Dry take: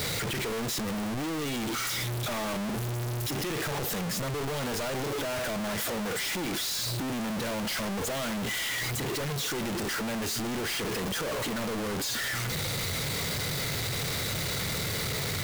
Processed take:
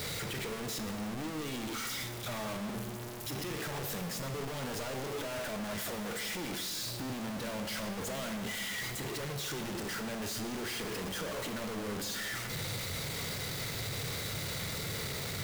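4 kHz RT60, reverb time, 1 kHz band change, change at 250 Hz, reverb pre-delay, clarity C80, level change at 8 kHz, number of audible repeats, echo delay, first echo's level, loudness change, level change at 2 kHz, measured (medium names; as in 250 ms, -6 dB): 1.3 s, 1.7 s, -6.0 dB, -6.0 dB, 15 ms, 10.0 dB, -6.5 dB, no echo, no echo, no echo, -6.5 dB, -6.5 dB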